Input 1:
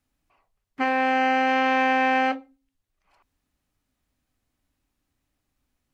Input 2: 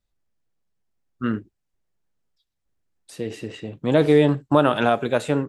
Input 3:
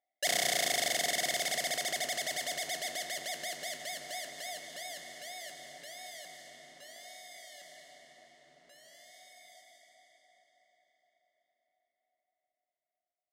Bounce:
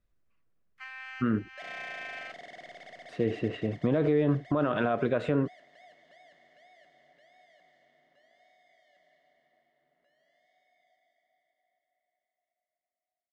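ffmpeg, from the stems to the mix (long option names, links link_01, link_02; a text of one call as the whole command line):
ffmpeg -i stem1.wav -i stem2.wav -i stem3.wav -filter_complex "[0:a]highpass=frequency=1300:width=0.5412,highpass=frequency=1300:width=1.3066,volume=-14.5dB[link_01];[1:a]bandreject=frequency=850:width=5,alimiter=limit=-11.5dB:level=0:latency=1:release=63,volume=2.5dB,asplit=2[link_02][link_03];[2:a]adelay=1350,volume=-11dB[link_04];[link_03]apad=whole_len=261872[link_05];[link_01][link_05]sidechaincompress=threshold=-38dB:ratio=3:attack=11:release=274[link_06];[link_02][link_04]amix=inputs=2:normalize=0,lowpass=2100,alimiter=limit=-17dB:level=0:latency=1:release=93,volume=0dB[link_07];[link_06][link_07]amix=inputs=2:normalize=0" out.wav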